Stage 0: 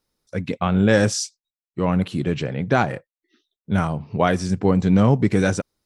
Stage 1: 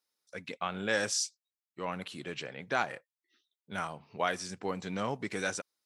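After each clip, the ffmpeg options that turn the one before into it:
-af "highpass=f=1.3k:p=1,volume=-5.5dB"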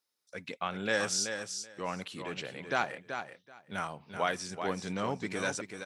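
-af "aecho=1:1:381|762:0.422|0.0633"

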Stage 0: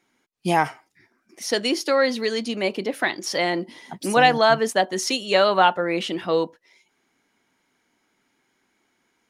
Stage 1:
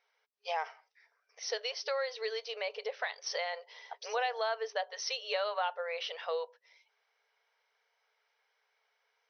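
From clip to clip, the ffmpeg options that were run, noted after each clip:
-af "afftfilt=real='re*between(b*sr/4096,410,6200)':imag='im*between(b*sr/4096,410,6200)':win_size=4096:overlap=0.75,acompressor=threshold=-28dB:ratio=2.5,volume=-6.5dB"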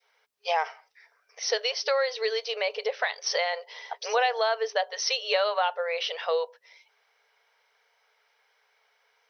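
-af "adynamicequalizer=threshold=0.00562:dfrequency=1200:dqfactor=0.79:tfrequency=1200:tqfactor=0.79:attack=5:release=100:ratio=0.375:range=2:mode=cutabove:tftype=bell,volume=9dB"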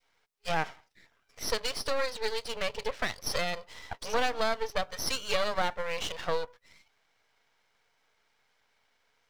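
-af "aeval=exprs='max(val(0),0)':c=same"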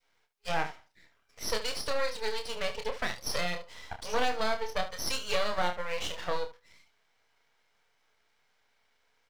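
-af "aecho=1:1:28|73:0.473|0.237,volume=-2dB"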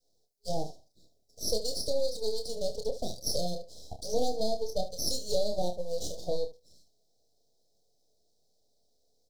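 -af "asuperstop=centerf=1700:order=12:qfactor=0.5,volume=3dB"

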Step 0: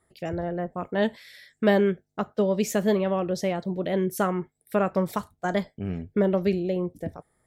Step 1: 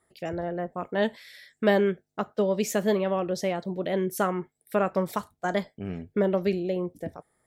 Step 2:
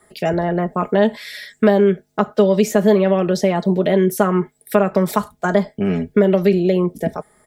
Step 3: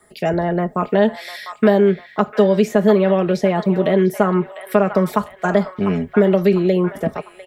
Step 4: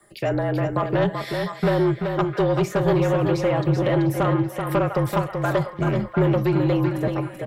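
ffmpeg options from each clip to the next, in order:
-af "lowshelf=f=160:g=-8"
-filter_complex "[0:a]acrossover=split=170|1500[a][b][c];[a]acompressor=threshold=-43dB:ratio=4[d];[b]acompressor=threshold=-27dB:ratio=4[e];[c]acompressor=threshold=-45dB:ratio=4[f];[d][e][f]amix=inputs=3:normalize=0,asplit=2[g][h];[h]alimiter=level_in=2.5dB:limit=-24dB:level=0:latency=1:release=64,volume=-2.5dB,volume=0dB[i];[g][i]amix=inputs=2:normalize=0,aecho=1:1:4.8:0.52,volume=9dB"
-filter_complex "[0:a]acrossover=split=700|3300[a][b][c];[b]aecho=1:1:700|1400|2100|2800|3500:0.398|0.175|0.0771|0.0339|0.0149[d];[c]alimiter=level_in=4.5dB:limit=-24dB:level=0:latency=1:release=361,volume=-4.5dB[e];[a][d][e]amix=inputs=3:normalize=0"
-filter_complex "[0:a]afreqshift=-41,asoftclip=type=tanh:threshold=-12dB,asplit=2[a][b];[b]aecho=0:1:383|766|1149:0.531|0.0849|0.0136[c];[a][c]amix=inputs=2:normalize=0,volume=-2.5dB"

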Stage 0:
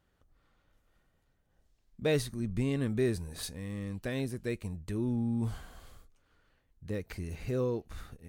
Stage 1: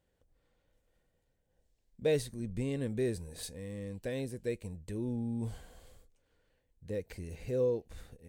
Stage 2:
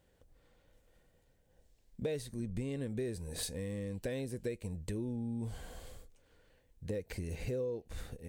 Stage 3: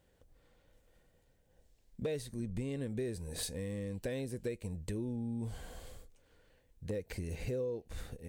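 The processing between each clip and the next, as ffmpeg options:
-af "equalizer=f=500:t=o:w=0.33:g=9,equalizer=f=1.25k:t=o:w=0.33:g=-11,equalizer=f=8k:t=o:w=0.33:g=5,volume=-4.5dB"
-af "acompressor=threshold=-42dB:ratio=6,volume=7dB"
-af "volume=28dB,asoftclip=hard,volume=-28dB"

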